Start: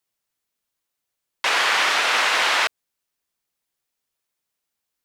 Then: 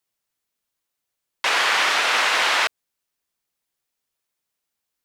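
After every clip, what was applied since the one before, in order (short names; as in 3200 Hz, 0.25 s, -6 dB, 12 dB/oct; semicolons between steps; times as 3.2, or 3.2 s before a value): nothing audible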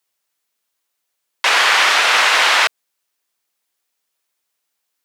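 HPF 430 Hz 6 dB/oct; gain +6.5 dB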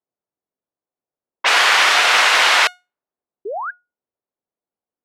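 low-pass opened by the level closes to 550 Hz, open at -11.5 dBFS; painted sound rise, 3.45–3.71, 370–1700 Hz -25 dBFS; resonator 720 Hz, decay 0.25 s, mix 50%; gain +5.5 dB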